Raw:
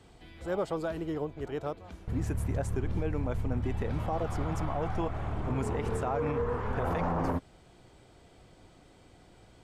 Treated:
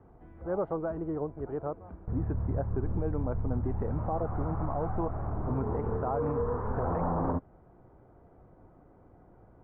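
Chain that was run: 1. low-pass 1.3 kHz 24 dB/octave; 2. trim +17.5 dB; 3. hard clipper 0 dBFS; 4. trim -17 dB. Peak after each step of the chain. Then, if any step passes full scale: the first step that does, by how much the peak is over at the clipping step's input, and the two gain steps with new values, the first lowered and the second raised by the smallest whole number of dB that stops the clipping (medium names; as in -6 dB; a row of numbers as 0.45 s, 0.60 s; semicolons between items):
-21.5 dBFS, -4.0 dBFS, -4.0 dBFS, -21.0 dBFS; nothing clips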